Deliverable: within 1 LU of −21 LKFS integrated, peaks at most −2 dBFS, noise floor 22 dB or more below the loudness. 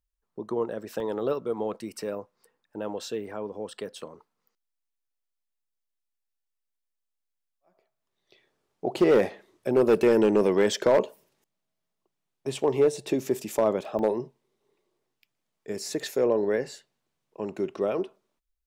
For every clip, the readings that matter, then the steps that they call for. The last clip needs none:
share of clipped samples 0.5%; peaks flattened at −14.0 dBFS; number of dropouts 2; longest dropout 1.6 ms; integrated loudness −26.5 LKFS; sample peak −14.0 dBFS; target loudness −21.0 LKFS
→ clipped peaks rebuilt −14 dBFS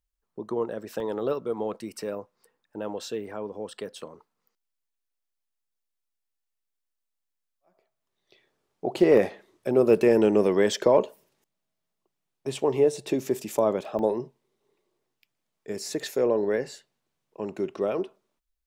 share of clipped samples 0.0%; number of dropouts 2; longest dropout 1.6 ms
→ repair the gap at 0:01.00/0:13.99, 1.6 ms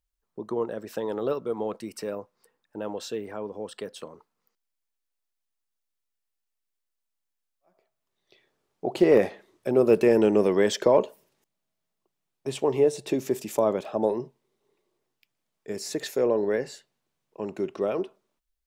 number of dropouts 0; integrated loudness −26.0 LKFS; sample peak −7.5 dBFS; target loudness −21.0 LKFS
→ level +5 dB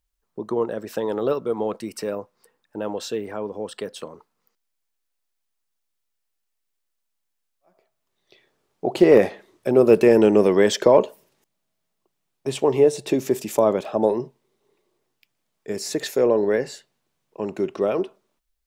integrated loudness −21.0 LKFS; sample peak −2.5 dBFS; background noise floor −77 dBFS

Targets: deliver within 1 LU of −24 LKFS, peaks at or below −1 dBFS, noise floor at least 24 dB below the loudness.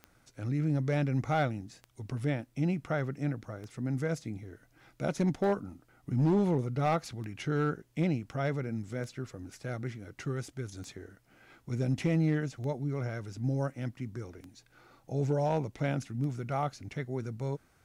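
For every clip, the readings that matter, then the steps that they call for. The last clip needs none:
number of clicks 10; integrated loudness −33.0 LKFS; sample peak −21.0 dBFS; target loudness −24.0 LKFS
→ click removal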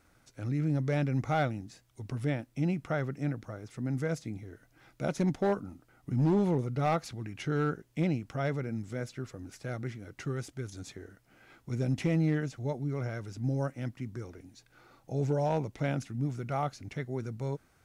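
number of clicks 0; integrated loudness −33.0 LKFS; sample peak −21.0 dBFS; target loudness −24.0 LKFS
→ level +9 dB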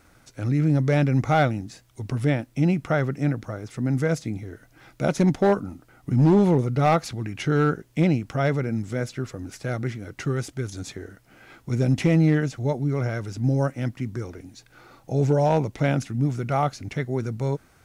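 integrated loudness −24.0 LKFS; sample peak −12.0 dBFS; background noise floor −58 dBFS

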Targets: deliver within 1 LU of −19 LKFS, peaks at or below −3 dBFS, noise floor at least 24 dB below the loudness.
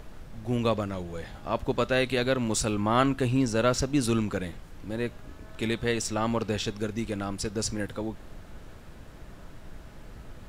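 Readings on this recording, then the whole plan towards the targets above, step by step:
background noise floor −47 dBFS; target noise floor −53 dBFS; integrated loudness −28.5 LKFS; sample peak −10.5 dBFS; target loudness −19.0 LKFS
→ noise reduction from a noise print 6 dB
level +9.5 dB
brickwall limiter −3 dBFS

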